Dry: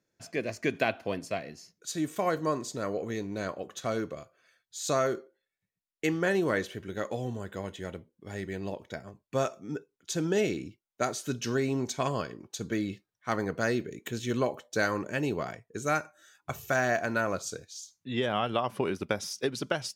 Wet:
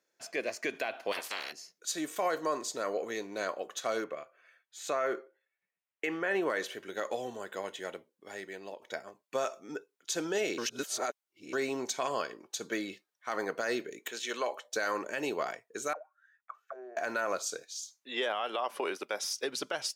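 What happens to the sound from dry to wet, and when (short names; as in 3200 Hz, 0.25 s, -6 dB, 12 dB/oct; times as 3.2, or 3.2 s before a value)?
1.11–1.51 spectral limiter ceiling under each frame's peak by 29 dB
4.04–6.5 resonant high shelf 3300 Hz -9 dB, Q 1.5
7.94–8.82 fade out, to -8 dB
10.58–11.53 reverse
14.08–14.65 weighting filter A
15.93–16.97 auto-wah 390–2100 Hz, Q 17, down, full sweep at -23.5 dBFS
17.63–19.24 HPF 290 Hz
whole clip: HPF 470 Hz 12 dB/oct; limiter -24 dBFS; gain +2.5 dB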